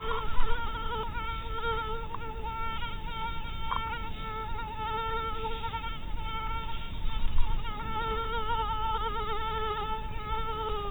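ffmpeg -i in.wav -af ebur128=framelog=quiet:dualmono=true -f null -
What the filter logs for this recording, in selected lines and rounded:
Integrated loudness:
  I:         -31.5 LUFS
  Threshold: -41.5 LUFS
Loudness range:
  LRA:         2.6 LU
  Threshold: -51.7 LUFS
  LRA low:   -32.6 LUFS
  LRA high:  -30.0 LUFS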